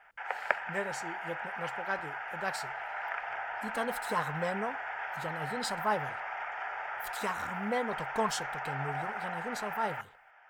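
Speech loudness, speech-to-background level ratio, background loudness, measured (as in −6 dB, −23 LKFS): −37.0 LKFS, 0.5 dB, −37.5 LKFS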